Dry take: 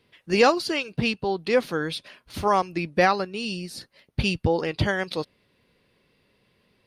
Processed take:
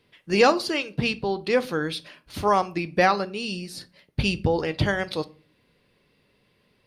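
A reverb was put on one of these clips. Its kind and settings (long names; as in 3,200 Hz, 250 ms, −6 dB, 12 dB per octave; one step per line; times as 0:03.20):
rectangular room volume 250 cubic metres, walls furnished, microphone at 0.38 metres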